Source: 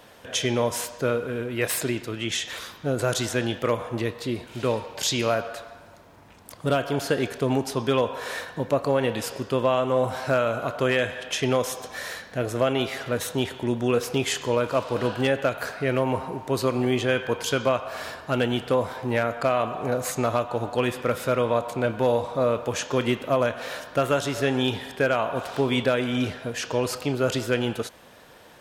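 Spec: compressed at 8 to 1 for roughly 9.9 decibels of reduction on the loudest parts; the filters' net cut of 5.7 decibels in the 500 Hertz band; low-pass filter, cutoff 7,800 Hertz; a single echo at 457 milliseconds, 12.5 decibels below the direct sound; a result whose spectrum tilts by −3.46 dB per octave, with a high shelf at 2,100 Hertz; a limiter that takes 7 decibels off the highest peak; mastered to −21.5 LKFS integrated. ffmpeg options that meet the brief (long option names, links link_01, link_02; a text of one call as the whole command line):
ffmpeg -i in.wav -af "lowpass=7800,equalizer=frequency=500:width_type=o:gain=-7.5,highshelf=frequency=2100:gain=7,acompressor=threshold=-28dB:ratio=8,alimiter=limit=-21.5dB:level=0:latency=1,aecho=1:1:457:0.237,volume=12dB" out.wav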